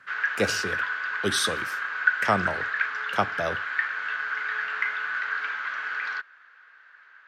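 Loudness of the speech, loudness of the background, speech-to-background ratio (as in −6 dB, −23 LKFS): −29.0 LKFS, −28.0 LKFS, −1.0 dB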